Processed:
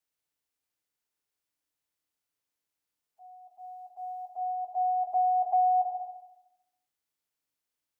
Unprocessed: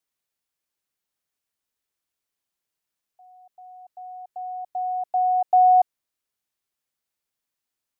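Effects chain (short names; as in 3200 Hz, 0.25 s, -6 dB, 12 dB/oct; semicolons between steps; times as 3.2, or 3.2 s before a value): bin magnitudes rounded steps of 30 dB; FDN reverb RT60 0.89 s, low-frequency decay 1.05×, high-frequency decay 0.8×, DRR 3 dB; compressor 4:1, threshold -20 dBFS, peak gain reduction 10 dB; gain -4 dB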